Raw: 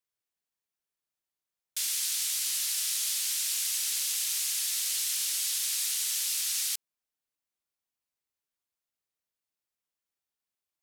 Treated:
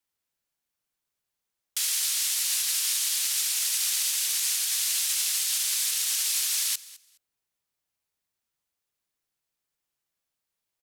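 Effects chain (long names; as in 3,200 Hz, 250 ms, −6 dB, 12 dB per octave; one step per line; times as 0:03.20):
brickwall limiter −21.5 dBFS, peak gain reduction 4 dB
frequency shifter −180 Hz
repeating echo 209 ms, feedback 18%, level −19.5 dB
level +5 dB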